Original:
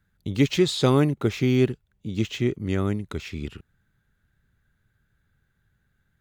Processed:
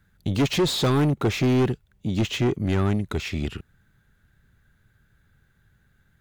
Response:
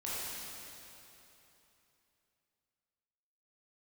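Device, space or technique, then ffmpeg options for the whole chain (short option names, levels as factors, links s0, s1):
saturation between pre-emphasis and de-emphasis: -af "highshelf=f=2400:g=9,asoftclip=type=tanh:threshold=0.0668,highshelf=f=2400:g=-9,volume=2.24"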